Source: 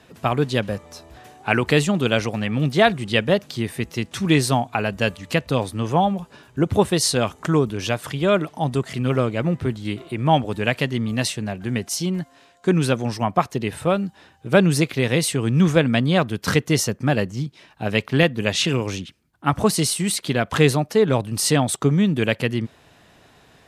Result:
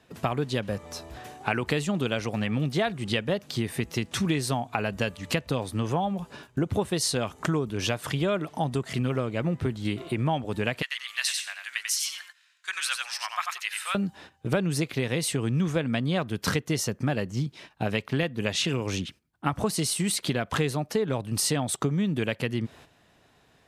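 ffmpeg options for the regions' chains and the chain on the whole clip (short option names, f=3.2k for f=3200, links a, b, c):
-filter_complex "[0:a]asettb=1/sr,asplit=3[a][b][c];[a]atrim=end=10.824[d];[b]atrim=start=10.82:end=13.95,asetpts=PTS-STARTPTS,afade=t=in:d=0.004:c=qsin,afade=t=out:st=3.126:d=0.004:c=qsin,highpass=f=1.4k:w=0.5412,highpass=f=1.4k:w=1.3066,aecho=1:1:91|182|273:0.596|0.0893|0.0134,atrim=end_sample=138033[e];[c]atrim=start=13.946[f];[d][e]acrossfade=d=0.004:c1=hsin:c2=qsin[g];[g][f]acrossfade=d=0.004:c1=qsin:c2=hsin,agate=range=-11dB:threshold=-47dB:ratio=16:detection=peak,acompressor=threshold=-26dB:ratio=5,volume=2dB"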